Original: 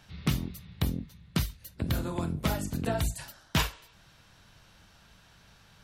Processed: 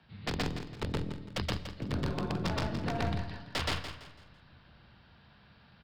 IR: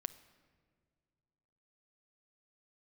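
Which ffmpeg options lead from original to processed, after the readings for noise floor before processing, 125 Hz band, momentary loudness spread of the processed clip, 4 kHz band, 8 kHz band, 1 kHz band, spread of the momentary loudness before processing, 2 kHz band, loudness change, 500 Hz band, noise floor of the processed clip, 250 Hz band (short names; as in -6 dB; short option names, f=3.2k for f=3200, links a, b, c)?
-59 dBFS, -3.5 dB, 5 LU, -1.5 dB, -9.0 dB, 0.0 dB, 8 LU, -0.5 dB, -3.0 dB, -0.5 dB, -60 dBFS, -3.0 dB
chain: -filter_complex "[0:a]highshelf=f=3.9k:g=-8.5,aresample=11025,aeval=exprs='(mod(10*val(0)+1,2)-1)/10':c=same,aresample=44100,afreqshift=27,aeval=exprs='clip(val(0),-1,0.0299)':c=same,aecho=1:1:167|334|501|668:0.316|0.108|0.0366|0.0124,asplit=2[a][b];[1:a]atrim=start_sample=2205,adelay=123[c];[b][c]afir=irnorm=-1:irlink=0,volume=3dB[d];[a][d]amix=inputs=2:normalize=0,volume=-4.5dB"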